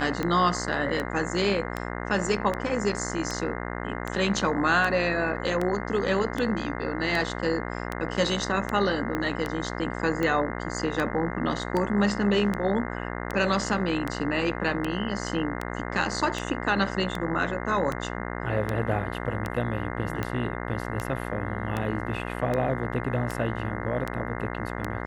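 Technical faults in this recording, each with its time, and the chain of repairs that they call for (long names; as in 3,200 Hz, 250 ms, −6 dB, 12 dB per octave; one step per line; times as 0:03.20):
mains buzz 60 Hz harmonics 35 −33 dBFS
scratch tick 78 rpm −15 dBFS
0:09.15: click −15 dBFS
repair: click removal
hum removal 60 Hz, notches 35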